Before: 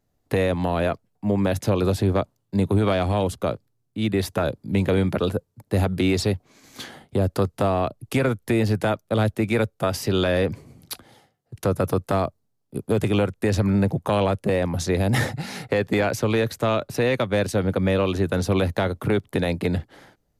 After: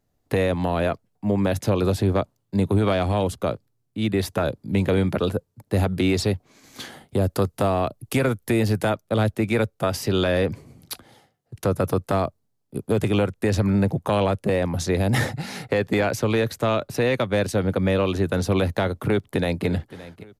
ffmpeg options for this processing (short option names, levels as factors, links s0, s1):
-filter_complex "[0:a]asettb=1/sr,asplit=3[s0][s1][s2];[s0]atrim=end=6.844[s3];[s1]atrim=start=6.84:end=8.9,asetpts=PTS-STARTPTS,afade=t=in:d=0.004:c=qsin,afade=t=out:st=2.056:d=0.004:c=qsin,highshelf=f=8000:g=7[s4];[s2]atrim=start=8.896[s5];[s3][s4]acrossfade=d=0.004:c1=hsin:c2=qsin[s6];[s6][s5]acrossfade=d=0.004:c1=qsin:c2=hsin,asplit=2[s7][s8];[s8]afade=t=in:st=19.03:d=0.01,afade=t=out:st=19.66:d=0.01,aecho=0:1:570|1140|1710:0.141254|0.0494388|0.0173036[s9];[s7][s9]amix=inputs=2:normalize=0"